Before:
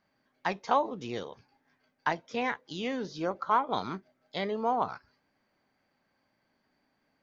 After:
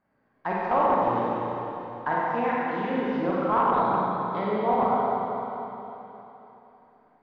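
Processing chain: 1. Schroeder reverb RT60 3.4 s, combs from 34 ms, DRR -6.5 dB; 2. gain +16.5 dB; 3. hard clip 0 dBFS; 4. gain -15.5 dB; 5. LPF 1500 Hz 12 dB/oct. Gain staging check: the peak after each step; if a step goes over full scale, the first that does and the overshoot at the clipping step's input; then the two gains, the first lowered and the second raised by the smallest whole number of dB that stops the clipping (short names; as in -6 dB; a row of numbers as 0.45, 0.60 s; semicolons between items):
-9.0, +7.5, 0.0, -15.5, -15.0 dBFS; step 2, 7.5 dB; step 2 +8.5 dB, step 4 -7.5 dB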